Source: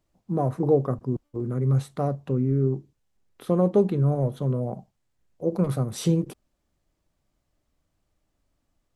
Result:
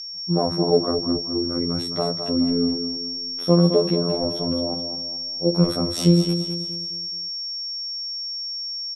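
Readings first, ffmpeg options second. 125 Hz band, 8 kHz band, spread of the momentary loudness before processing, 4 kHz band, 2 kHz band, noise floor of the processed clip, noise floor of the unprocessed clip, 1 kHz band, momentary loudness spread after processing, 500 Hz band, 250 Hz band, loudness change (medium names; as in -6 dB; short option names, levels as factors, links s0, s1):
0.0 dB, +5.0 dB, 9 LU, +25.5 dB, no reading, -30 dBFS, -76 dBFS, +3.0 dB, 9 LU, +3.5 dB, +5.5 dB, +3.0 dB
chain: -af "afftfilt=real='hypot(re,im)*cos(PI*b)':imag='0':win_size=2048:overlap=0.75,aeval=exprs='val(0)+0.0112*sin(2*PI*5500*n/s)':c=same,aecho=1:1:212|424|636|848|1060:0.376|0.165|0.0728|0.032|0.0141,volume=2.37"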